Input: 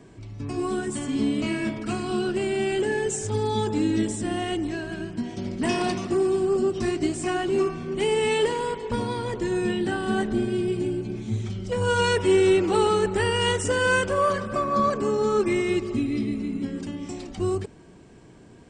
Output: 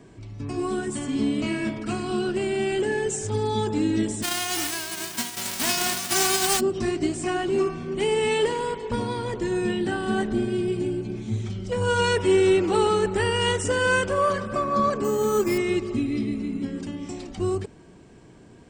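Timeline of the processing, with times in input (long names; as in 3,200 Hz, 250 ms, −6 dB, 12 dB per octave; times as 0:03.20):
0:04.22–0:06.59: spectral envelope flattened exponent 0.1
0:15.04–0:15.58: bad sample-rate conversion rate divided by 6×, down none, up hold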